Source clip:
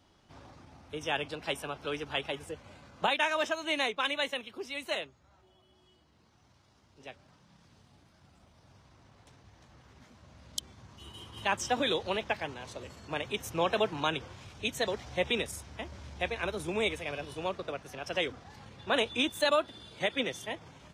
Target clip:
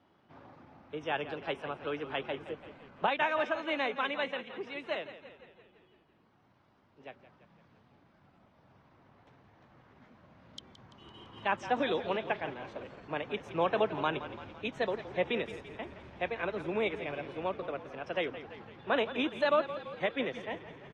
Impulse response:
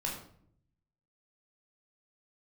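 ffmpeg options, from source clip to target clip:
-filter_complex "[0:a]highpass=140,lowpass=2.2k,asplit=2[a][b];[b]asplit=7[c][d][e][f][g][h][i];[c]adelay=169,afreqshift=-32,volume=-13dB[j];[d]adelay=338,afreqshift=-64,volume=-17.4dB[k];[e]adelay=507,afreqshift=-96,volume=-21.9dB[l];[f]adelay=676,afreqshift=-128,volume=-26.3dB[m];[g]adelay=845,afreqshift=-160,volume=-30.7dB[n];[h]adelay=1014,afreqshift=-192,volume=-35.2dB[o];[i]adelay=1183,afreqshift=-224,volume=-39.6dB[p];[j][k][l][m][n][o][p]amix=inputs=7:normalize=0[q];[a][q]amix=inputs=2:normalize=0"

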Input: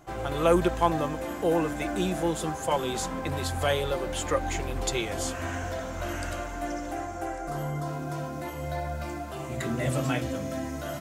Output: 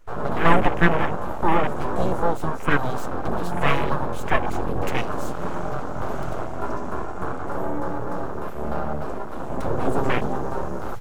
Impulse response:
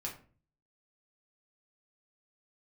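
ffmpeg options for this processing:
-af "acontrast=71,aeval=exprs='abs(val(0))':c=same,afwtdn=0.0355,volume=3dB"

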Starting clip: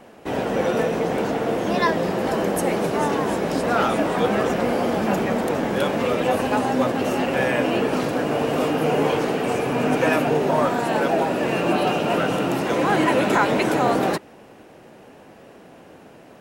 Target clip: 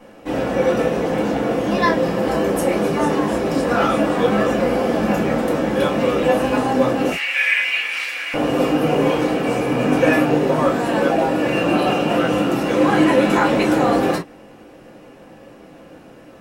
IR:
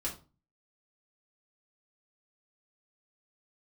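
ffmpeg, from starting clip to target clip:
-filter_complex "[0:a]asettb=1/sr,asplit=3[a][b][c];[a]atrim=end=7.114[d];[b]atrim=start=7.11:end=8.34,asetpts=PTS-STARTPTS,afade=t=in:d=0.004:c=qsin,afade=t=out:st=1.226:d=0.004:c=qsin,highpass=f=2.2k:t=q:w=5[e];[c]atrim=start=8.336[f];[d][e]acrossfade=d=0.004:c1=hsin:c2=qsin[g];[g][f]acrossfade=d=0.004:c1=qsin:c2=hsin[h];[1:a]atrim=start_sample=2205,atrim=end_sample=3087[i];[h][i]afir=irnorm=-1:irlink=0"

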